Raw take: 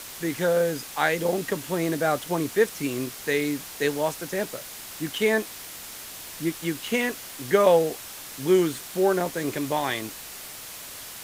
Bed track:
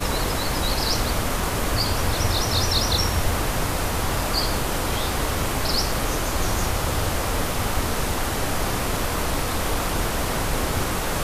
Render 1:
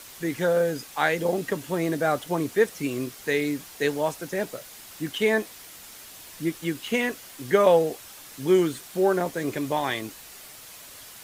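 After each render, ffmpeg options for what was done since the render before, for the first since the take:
-af "afftdn=nr=6:nf=-40"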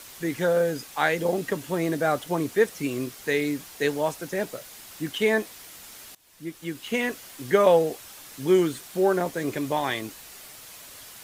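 -filter_complex "[0:a]asplit=2[a][b];[a]atrim=end=6.15,asetpts=PTS-STARTPTS,afade=t=out:st=6.146:d=0.004:c=hsin:silence=0.0841395[c];[b]atrim=start=6.15,asetpts=PTS-STARTPTS,afade=t=in:d=0.98:silence=0.0841395[d];[c][d]concat=n=2:v=0:a=1"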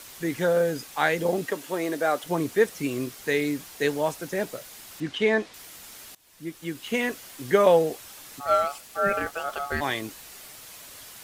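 -filter_complex "[0:a]asettb=1/sr,asplit=3[a][b][c];[a]atrim=end=1.464[d];[b]atrim=start=1.46:end=2.24,asetpts=PTS-STARTPTS,afade=t=in:d=0.004:c=qsin,afade=t=out:st=0.776:d=0.004:c=qsin,highpass=310[e];[c]atrim=start=2.236[f];[d][e]acrossfade=d=0.004:c1=hsin:c2=qsin[g];[g][f]acrossfade=d=0.004:c1=qsin:c2=hsin,asettb=1/sr,asplit=3[h][i][j];[h]atrim=end=5.004[k];[i]atrim=start=5:end=5.54,asetpts=PTS-STARTPTS,afade=t=in:d=0.004:c=qsin,afade=t=out:st=0.536:d=0.004:c=qsin,lowpass=5k[l];[j]atrim=start=5.536[m];[k][l]acrossfade=d=0.004:c1=hsin:c2=qsin[n];[n][m]acrossfade=d=0.004:c1=qsin:c2=hsin,asplit=3[o][p][q];[o]afade=t=out:st=8.39:d=0.02[r];[p]aeval=exprs='val(0)*sin(2*PI*990*n/s)':c=same,afade=t=in:st=8.39:d=0.02,afade=t=out:st=9.8:d=0.02[s];[q]afade=t=in:st=9.8:d=0.02[t];[r][s][t]amix=inputs=3:normalize=0"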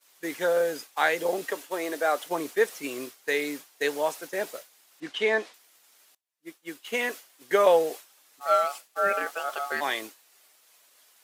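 -af "highpass=420,agate=range=-33dB:threshold=-34dB:ratio=3:detection=peak"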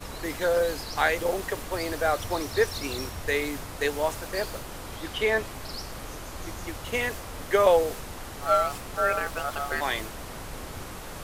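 -filter_complex "[1:a]volume=-14.5dB[a];[0:a][a]amix=inputs=2:normalize=0"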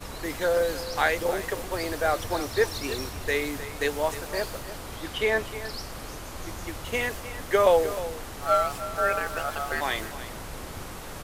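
-af "aecho=1:1:308:0.211"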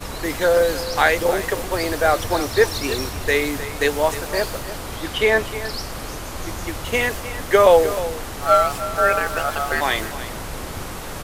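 -af "volume=7.5dB,alimiter=limit=-2dB:level=0:latency=1"

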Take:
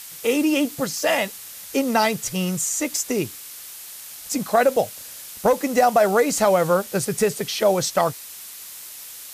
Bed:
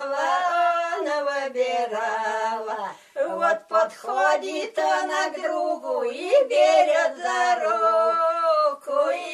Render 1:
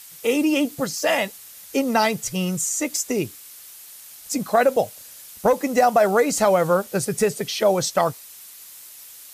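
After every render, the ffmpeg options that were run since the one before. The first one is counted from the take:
-af "afftdn=nr=6:nf=-39"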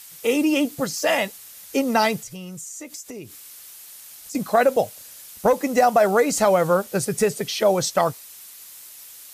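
-filter_complex "[0:a]asettb=1/sr,asplit=3[a][b][c];[a]atrim=end=2.214[d];[b]atrim=start=2.21:end=4.35,asetpts=PTS-STARTPTS,afade=t=in:d=0.004:c=qsin,afade=t=out:st=2.136:d=0.004:c=qsin,acompressor=threshold=-35dB:ratio=4:attack=3.2:release=140:knee=1:detection=peak[e];[c]atrim=start=4.346[f];[d][e]acrossfade=d=0.004:c1=hsin:c2=qsin[g];[g][f]acrossfade=d=0.004:c1=qsin:c2=hsin"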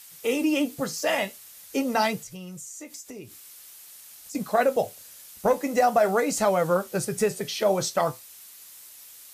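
-af "flanger=delay=9.6:depth=6.6:regen=-63:speed=0.46:shape=triangular"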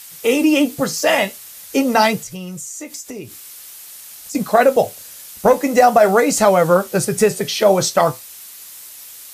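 -af "volume=9.5dB,alimiter=limit=-1dB:level=0:latency=1"

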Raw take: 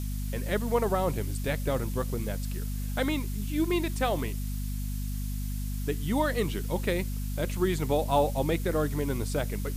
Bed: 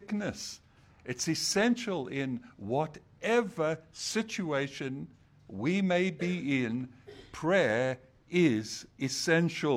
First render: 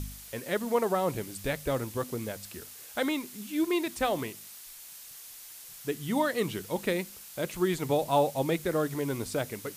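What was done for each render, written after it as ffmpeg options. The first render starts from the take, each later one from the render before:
-af "bandreject=f=50:t=h:w=4,bandreject=f=100:t=h:w=4,bandreject=f=150:t=h:w=4,bandreject=f=200:t=h:w=4,bandreject=f=250:t=h:w=4"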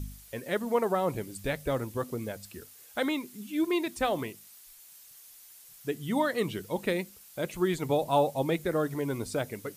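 -af "afftdn=nr=8:nf=-47"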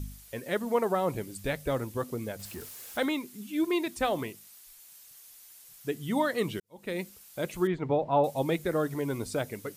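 -filter_complex "[0:a]asettb=1/sr,asplit=3[a][b][c];[a]atrim=end=2.394[d];[b]atrim=start=2.39:end=3.06,asetpts=PTS-STARTPTS,afade=t=in:d=0.004:c=qsin,afade=t=out:st=0.666:d=0.004:c=qsin,aeval=exprs='val(0)+0.5*0.00708*sgn(val(0))':c=same[e];[c]atrim=start=3.056[f];[d][e]acrossfade=d=0.004:c1=hsin:c2=qsin[g];[g][f]acrossfade=d=0.004:c1=qsin:c2=hsin,asettb=1/sr,asplit=3[h][i][j];[h]atrim=end=7.674[k];[i]atrim=start=7.67:end=8.24,asetpts=PTS-STARTPTS,afade=t=in:d=0.004:c=qsin,afade=t=out:st=0.566:d=0.004:c=qsin,lowpass=2k[l];[j]atrim=start=8.236[m];[k][l]acrossfade=d=0.004:c1=hsin:c2=qsin[n];[n][m]acrossfade=d=0.004:c1=qsin:c2=hsin,asplit=2[o][p];[o]atrim=end=6.6,asetpts=PTS-STARTPTS,afade=t=out:st=6.596:d=0.004:c=hsin[q];[p]atrim=start=6.6,asetpts=PTS-STARTPTS,afade=t=in:d=0.43:c=qua[r];[q][r]concat=n=2:v=0:a=1"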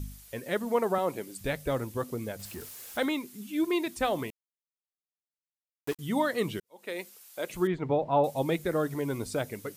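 -filter_complex "[0:a]asettb=1/sr,asplit=3[a][b][c];[a]atrim=end=0.984[d];[b]atrim=start=0.98:end=1.41,asetpts=PTS-STARTPTS,afade=t=in:d=0.004:c=qsin,afade=t=out:st=0.426:d=0.004:c=qsin,highpass=230[e];[c]atrim=start=1.406[f];[d][e]acrossfade=d=0.004:c1=hsin:c2=qsin[g];[g][f]acrossfade=d=0.004:c1=qsin:c2=hsin,asettb=1/sr,asplit=3[h][i][j];[h]atrim=end=4.304[k];[i]atrim=start=4.3:end=5.99,asetpts=PTS-STARTPTS,afade=t=in:d=0.004:c=qsin,afade=t=out:st=1.686:d=0.004:c=qsin,aeval=exprs='val(0)*gte(abs(val(0)),0.02)':c=same[l];[j]atrim=start=5.986[m];[k][l]acrossfade=d=0.004:c1=hsin:c2=qsin[n];[n][m]acrossfade=d=0.004:c1=qsin:c2=hsin,asettb=1/sr,asplit=3[o][p][q];[o]atrim=end=6.644[r];[p]atrim=start=6.64:end=7.5,asetpts=PTS-STARTPTS,afade=t=in:d=0.004:c=qsin,afade=t=out:st=0.856:d=0.004:c=qsin,highpass=390[s];[q]atrim=start=7.496[t];[r][s]acrossfade=d=0.004:c1=hsin:c2=qsin[u];[u][t]acrossfade=d=0.004:c1=qsin:c2=hsin"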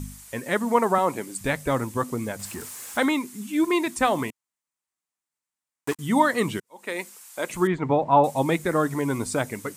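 -af "equalizer=f=125:t=o:w=1:g=4,equalizer=f=250:t=o:w=1:g=7,equalizer=f=1k:t=o:w=1:g=10,equalizer=f=2k:t=o:w=1:g=6,equalizer=f=8k:t=o:w=1:g=11"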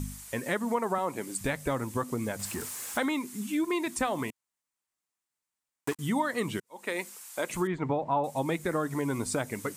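-af "acompressor=threshold=-28dB:ratio=3"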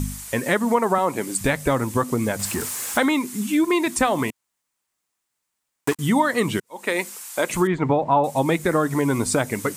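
-af "volume=9.5dB"

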